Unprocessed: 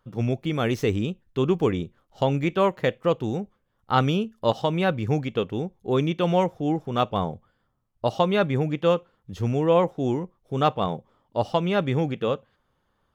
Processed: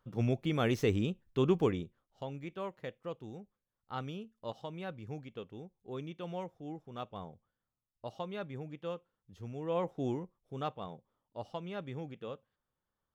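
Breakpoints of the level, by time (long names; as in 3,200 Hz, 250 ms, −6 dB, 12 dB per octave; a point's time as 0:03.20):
0:01.60 −6 dB
0:02.23 −19 dB
0:09.53 −19 dB
0:10.00 −9 dB
0:10.85 −18 dB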